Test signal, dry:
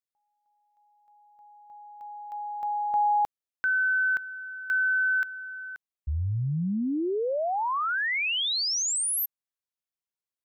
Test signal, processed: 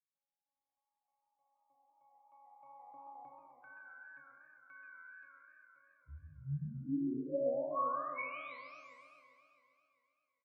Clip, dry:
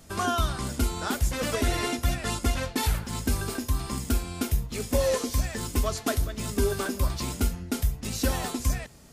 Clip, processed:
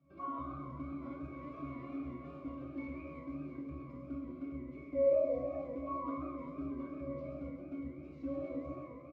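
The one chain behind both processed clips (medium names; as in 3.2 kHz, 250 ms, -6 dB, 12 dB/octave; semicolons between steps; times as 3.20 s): coarse spectral quantiser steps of 15 dB; bass shelf 440 Hz +3.5 dB; in parallel at +2.5 dB: compression, threshold -28 dBFS; on the sum: pitch-class resonator C#, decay 0.79 s; flange 0.68 Hz, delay 4 ms, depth 9.8 ms, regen +72%; band-pass 220–4200 Hz; on a send: frequency-shifting echo 176 ms, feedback 31%, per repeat +81 Hz, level -14.5 dB; on the sum: Schroeder reverb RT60 0.6 s, combs from 27 ms, DRR 4.5 dB; modulated delay 132 ms, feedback 73%, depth 196 cents, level -9 dB; trim +5.5 dB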